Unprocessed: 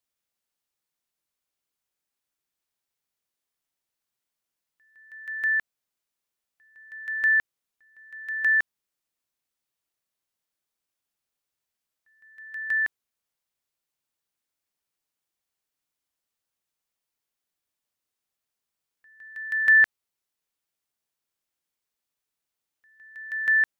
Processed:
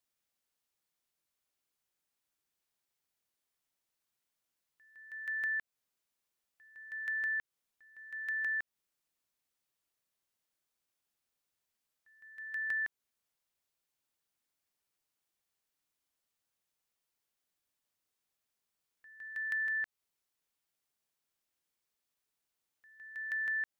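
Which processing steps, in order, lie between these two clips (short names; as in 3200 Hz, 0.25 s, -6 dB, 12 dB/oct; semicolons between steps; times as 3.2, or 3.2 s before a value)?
limiter -22.5 dBFS, peak gain reduction 10.5 dB; compressor 3:1, threshold -34 dBFS, peak gain reduction 7 dB; gain -1 dB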